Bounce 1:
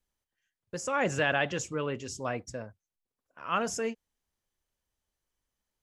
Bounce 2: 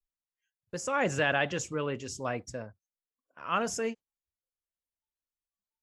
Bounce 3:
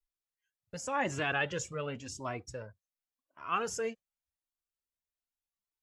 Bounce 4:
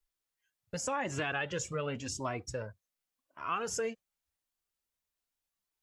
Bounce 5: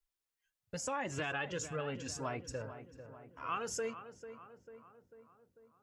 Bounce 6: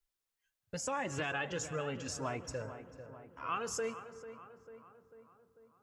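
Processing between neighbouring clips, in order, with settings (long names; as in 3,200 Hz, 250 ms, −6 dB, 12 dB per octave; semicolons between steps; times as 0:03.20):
noise reduction from a noise print of the clip's start 19 dB
flanger whose copies keep moving one way rising 0.89 Hz; level +1 dB
downward compressor 5 to 1, threshold −36 dBFS, peak gain reduction 9.5 dB; level +5 dB
feedback echo with a low-pass in the loop 445 ms, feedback 60%, low-pass 1,900 Hz, level −11 dB; level −3.5 dB
convolution reverb RT60 2.2 s, pre-delay 123 ms, DRR 16.5 dB; level +1 dB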